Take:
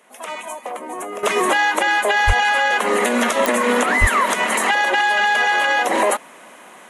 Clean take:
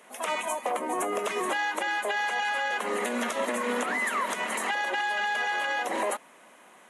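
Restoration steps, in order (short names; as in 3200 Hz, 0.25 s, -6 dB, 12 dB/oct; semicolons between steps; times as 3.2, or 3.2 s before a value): de-click; 2.26–2.38 HPF 140 Hz 24 dB/oct; 4–4.12 HPF 140 Hz 24 dB/oct; gain 0 dB, from 1.23 s -11.5 dB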